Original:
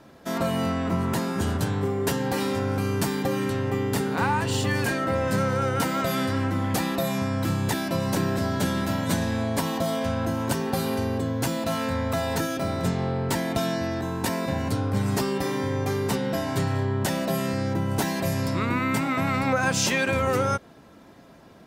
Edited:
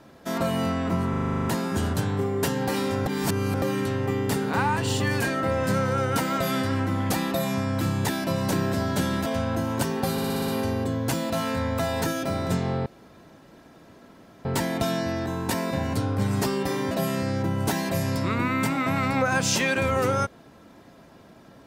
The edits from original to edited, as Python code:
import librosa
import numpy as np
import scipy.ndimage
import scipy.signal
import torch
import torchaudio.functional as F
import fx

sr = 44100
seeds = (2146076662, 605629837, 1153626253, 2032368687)

y = fx.edit(x, sr, fx.stutter(start_s=1.09, slice_s=0.04, count=10),
    fx.reverse_span(start_s=2.7, length_s=0.56),
    fx.cut(start_s=8.9, length_s=1.06),
    fx.stutter(start_s=10.82, slice_s=0.06, count=7),
    fx.insert_room_tone(at_s=13.2, length_s=1.59),
    fx.cut(start_s=15.66, length_s=1.56), tone=tone)